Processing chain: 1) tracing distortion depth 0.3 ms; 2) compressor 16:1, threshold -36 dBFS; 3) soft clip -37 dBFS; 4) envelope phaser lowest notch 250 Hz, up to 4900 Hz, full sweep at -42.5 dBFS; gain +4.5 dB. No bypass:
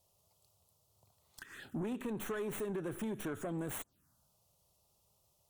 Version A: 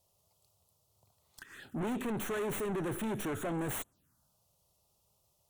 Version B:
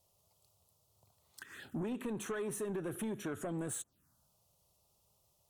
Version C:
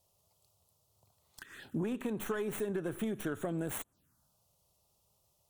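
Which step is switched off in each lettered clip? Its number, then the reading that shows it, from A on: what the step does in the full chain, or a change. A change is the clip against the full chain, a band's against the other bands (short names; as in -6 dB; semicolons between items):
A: 2, mean gain reduction 9.5 dB; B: 1, 8 kHz band +5.5 dB; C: 3, distortion -14 dB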